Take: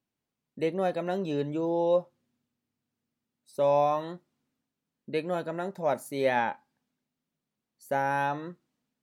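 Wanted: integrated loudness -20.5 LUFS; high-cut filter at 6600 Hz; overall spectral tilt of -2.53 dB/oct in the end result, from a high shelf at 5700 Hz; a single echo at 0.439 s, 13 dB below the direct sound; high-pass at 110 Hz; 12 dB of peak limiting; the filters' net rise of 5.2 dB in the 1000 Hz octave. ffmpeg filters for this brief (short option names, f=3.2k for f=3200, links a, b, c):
-af "highpass=110,lowpass=6.6k,equalizer=f=1k:t=o:g=7,highshelf=f=5.7k:g=-4,alimiter=limit=-22dB:level=0:latency=1,aecho=1:1:439:0.224,volume=12.5dB"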